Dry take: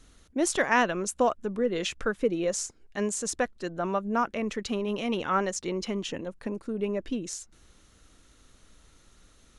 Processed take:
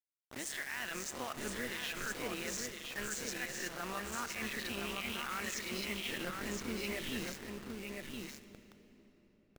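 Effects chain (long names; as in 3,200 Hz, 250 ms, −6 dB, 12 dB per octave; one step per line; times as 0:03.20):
peak hold with a rise ahead of every peak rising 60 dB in 0.32 s
low-pass that shuts in the quiet parts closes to 500 Hz, open at −21.5 dBFS
graphic EQ with 10 bands 125 Hz −9 dB, 500 Hz −8 dB, 1,000 Hz −3 dB, 2,000 Hz +11 dB, 4,000 Hz +8 dB, 8,000 Hz +7 dB
reversed playback
downward compressor 10 to 1, threshold −35 dBFS, peak gain reduction 24 dB
reversed playback
brickwall limiter −31.5 dBFS, peak gain reduction 10 dB
amplitude modulation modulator 140 Hz, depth 50%
bit reduction 8 bits
single-tap delay 1,015 ms −4.5 dB
on a send at −11 dB: convolution reverb RT60 4.1 s, pre-delay 21 ms
on the sum: level +3 dB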